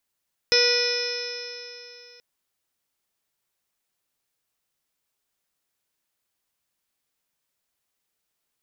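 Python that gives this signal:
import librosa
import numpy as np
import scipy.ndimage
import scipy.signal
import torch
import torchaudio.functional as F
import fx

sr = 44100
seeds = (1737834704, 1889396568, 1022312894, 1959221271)

y = fx.additive_stiff(sr, length_s=1.68, hz=482.0, level_db=-21, upper_db=(-18, -8.0, -6, -3.0, -15, -9.0, -7.5, -13.5, 3.5, -9.5), decay_s=3.02, stiffness=0.0016)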